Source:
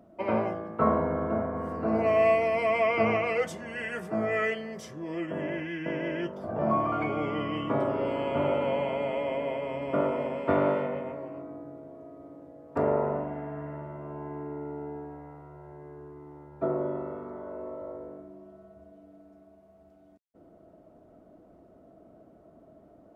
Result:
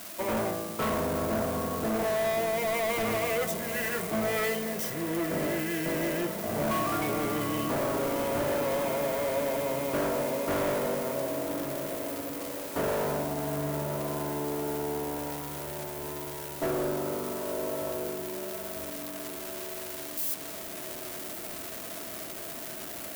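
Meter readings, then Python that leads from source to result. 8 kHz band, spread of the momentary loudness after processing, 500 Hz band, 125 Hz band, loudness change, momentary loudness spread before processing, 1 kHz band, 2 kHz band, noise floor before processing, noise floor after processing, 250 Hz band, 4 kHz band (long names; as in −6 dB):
can't be measured, 8 LU, −1.0 dB, +0.5 dB, −1.5 dB, 21 LU, −1.5 dB, +0.5 dB, −57 dBFS, −39 dBFS, 0.0 dB, +7.5 dB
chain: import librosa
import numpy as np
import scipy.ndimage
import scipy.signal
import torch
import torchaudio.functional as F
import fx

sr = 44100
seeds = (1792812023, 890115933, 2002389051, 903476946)

p1 = x + 0.5 * 10.0 ** (-24.0 / 20.0) * np.diff(np.sign(x), prepend=np.sign(x[:1]))
p2 = fx.peak_eq(p1, sr, hz=5200.0, db=-3.5, octaves=2.7)
p3 = fx.rider(p2, sr, range_db=10, speed_s=0.5)
p4 = p2 + (p3 * librosa.db_to_amplitude(0.0))
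p5 = np.clip(p4, -10.0 ** (-23.0 / 20.0), 10.0 ** (-23.0 / 20.0))
p6 = p5 + fx.echo_diffused(p5, sr, ms=1105, feedback_pct=64, wet_db=-11.0, dry=0)
y = p6 * librosa.db_to_amplitude(-3.5)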